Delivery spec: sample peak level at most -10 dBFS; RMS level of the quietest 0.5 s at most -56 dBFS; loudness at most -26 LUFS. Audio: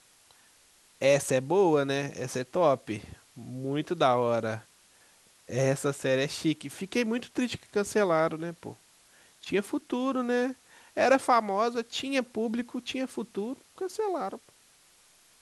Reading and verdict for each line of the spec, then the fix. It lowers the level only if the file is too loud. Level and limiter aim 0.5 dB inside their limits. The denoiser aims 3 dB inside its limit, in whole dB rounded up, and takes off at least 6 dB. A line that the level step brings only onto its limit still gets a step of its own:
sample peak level -10.5 dBFS: OK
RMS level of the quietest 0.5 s -61 dBFS: OK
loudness -29.0 LUFS: OK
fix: none

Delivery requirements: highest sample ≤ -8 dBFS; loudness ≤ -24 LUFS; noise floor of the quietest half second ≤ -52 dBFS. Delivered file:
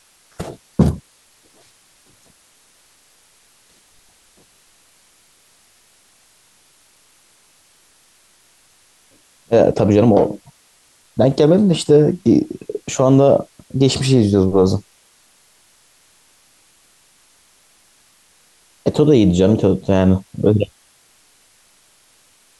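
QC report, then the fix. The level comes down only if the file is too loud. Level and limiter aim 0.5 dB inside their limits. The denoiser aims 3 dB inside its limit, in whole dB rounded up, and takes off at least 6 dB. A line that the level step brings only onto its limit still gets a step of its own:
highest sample -2.0 dBFS: fail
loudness -15.5 LUFS: fail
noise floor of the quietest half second -54 dBFS: OK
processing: gain -9 dB

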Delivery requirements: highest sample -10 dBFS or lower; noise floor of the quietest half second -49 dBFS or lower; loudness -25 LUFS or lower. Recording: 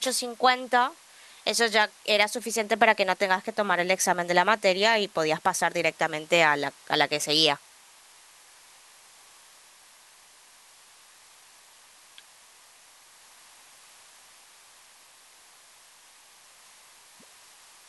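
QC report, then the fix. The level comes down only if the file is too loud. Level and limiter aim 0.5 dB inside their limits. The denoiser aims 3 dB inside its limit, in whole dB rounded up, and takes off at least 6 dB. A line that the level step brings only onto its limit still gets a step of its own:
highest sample -5.5 dBFS: fail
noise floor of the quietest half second -55 dBFS: OK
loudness -24.0 LUFS: fail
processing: gain -1.5 dB; limiter -10.5 dBFS

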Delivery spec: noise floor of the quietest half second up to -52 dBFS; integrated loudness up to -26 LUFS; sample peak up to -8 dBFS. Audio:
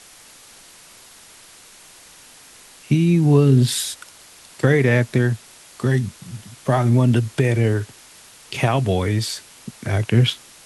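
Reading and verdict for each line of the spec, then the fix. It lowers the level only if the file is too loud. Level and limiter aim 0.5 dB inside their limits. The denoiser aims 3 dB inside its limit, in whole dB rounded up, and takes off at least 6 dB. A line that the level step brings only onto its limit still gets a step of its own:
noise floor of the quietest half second -46 dBFS: fail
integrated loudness -19.0 LUFS: fail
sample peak -3.0 dBFS: fail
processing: gain -7.5 dB

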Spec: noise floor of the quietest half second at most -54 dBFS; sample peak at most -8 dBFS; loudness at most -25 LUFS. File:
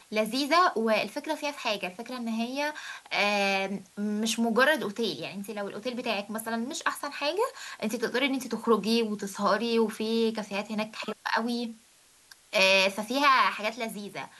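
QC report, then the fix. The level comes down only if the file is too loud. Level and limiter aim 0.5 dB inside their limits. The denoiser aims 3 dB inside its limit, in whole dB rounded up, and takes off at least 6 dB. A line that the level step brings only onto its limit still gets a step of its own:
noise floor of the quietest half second -60 dBFS: OK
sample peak -9.5 dBFS: OK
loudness -28.0 LUFS: OK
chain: none

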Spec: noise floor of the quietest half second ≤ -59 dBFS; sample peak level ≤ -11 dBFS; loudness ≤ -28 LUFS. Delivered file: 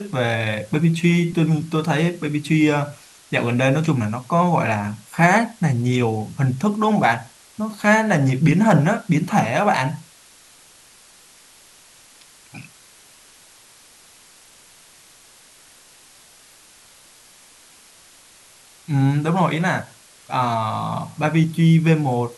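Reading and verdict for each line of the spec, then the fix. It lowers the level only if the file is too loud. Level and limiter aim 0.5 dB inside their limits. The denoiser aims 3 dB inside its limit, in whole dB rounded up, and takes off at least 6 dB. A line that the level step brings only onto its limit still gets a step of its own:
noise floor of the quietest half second -49 dBFS: fail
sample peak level -5.0 dBFS: fail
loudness -19.5 LUFS: fail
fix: denoiser 6 dB, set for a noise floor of -49 dBFS; gain -9 dB

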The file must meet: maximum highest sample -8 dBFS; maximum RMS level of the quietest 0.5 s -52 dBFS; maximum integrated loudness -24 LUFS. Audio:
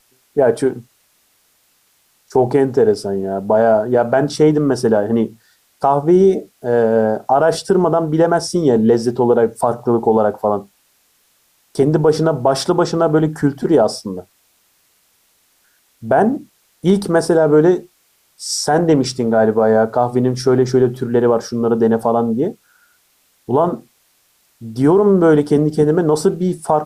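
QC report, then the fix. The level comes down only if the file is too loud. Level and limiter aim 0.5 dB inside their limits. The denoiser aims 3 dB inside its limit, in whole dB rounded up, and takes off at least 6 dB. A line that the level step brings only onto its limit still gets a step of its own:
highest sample -3.5 dBFS: fail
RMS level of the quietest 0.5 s -59 dBFS: OK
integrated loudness -15.5 LUFS: fail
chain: gain -9 dB

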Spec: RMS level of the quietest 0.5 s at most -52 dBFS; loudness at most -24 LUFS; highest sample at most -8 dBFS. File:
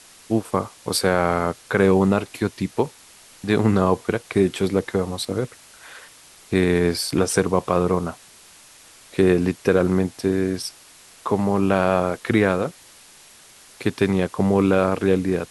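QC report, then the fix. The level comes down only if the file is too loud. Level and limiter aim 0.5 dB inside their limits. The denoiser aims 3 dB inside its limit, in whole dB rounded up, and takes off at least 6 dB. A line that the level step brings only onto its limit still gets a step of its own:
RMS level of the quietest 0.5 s -48 dBFS: fail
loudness -21.5 LUFS: fail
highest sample -4.5 dBFS: fail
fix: denoiser 6 dB, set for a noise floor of -48 dBFS; gain -3 dB; limiter -8.5 dBFS

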